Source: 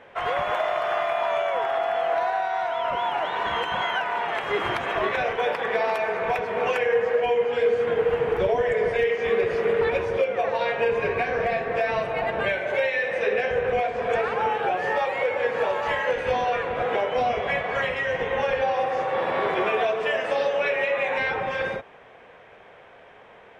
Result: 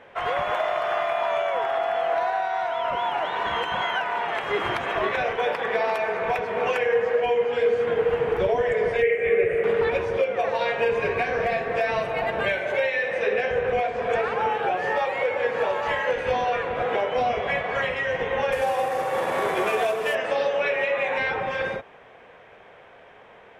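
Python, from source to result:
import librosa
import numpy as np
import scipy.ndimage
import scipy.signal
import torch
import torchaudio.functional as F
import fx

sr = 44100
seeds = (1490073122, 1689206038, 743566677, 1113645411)

y = fx.curve_eq(x, sr, hz=(160.0, 260.0, 390.0, 590.0, 960.0, 2200.0, 5200.0, 8200.0), db=(0, -9, 2, 2, -14, 6, -28, 0), at=(9.02, 9.64))
y = fx.high_shelf(y, sr, hz=4500.0, db=5.0, at=(10.39, 12.73))
y = fx.cvsd(y, sr, bps=64000, at=(18.52, 20.15))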